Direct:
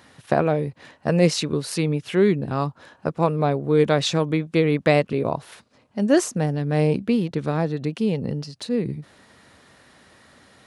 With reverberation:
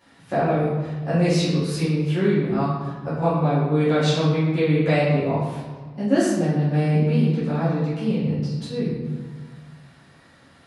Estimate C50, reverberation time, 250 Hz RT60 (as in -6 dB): 0.0 dB, 1.4 s, 1.8 s